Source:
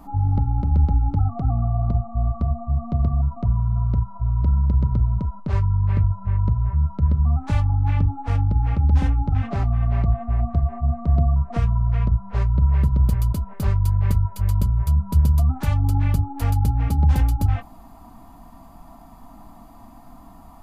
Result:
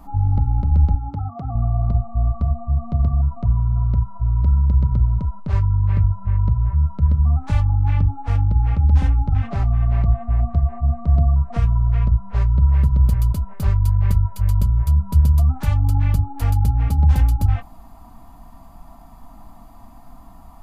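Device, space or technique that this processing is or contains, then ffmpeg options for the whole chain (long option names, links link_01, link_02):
low shelf boost with a cut just above: -filter_complex "[0:a]asettb=1/sr,asplit=3[link_01][link_02][link_03];[link_01]atrim=end=0.954[link_04];[link_02]atrim=start=0.95:end=1.55,asetpts=PTS-STARTPTS,afade=type=in:duration=0.004:curve=qsin,afade=type=out:start_time=0.596:duration=0.004:curve=qsin,highpass=frequency=210:poles=1[link_05];[link_03]atrim=start=1.546[link_06];[link_04][link_05]acrossfade=duration=0.004:curve1=hsin:curve2=qsin[link_07];[link_07][link_06]acrossfade=duration=0.004:curve1=qsin:curve2=hsin,lowshelf=frequency=73:gain=5.5,equalizer=frequency=320:width_type=o:width=1.2:gain=-4"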